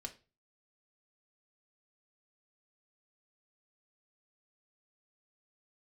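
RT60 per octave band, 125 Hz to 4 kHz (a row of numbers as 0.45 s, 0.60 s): 0.50 s, 0.35 s, 0.35 s, 0.30 s, 0.30 s, 0.30 s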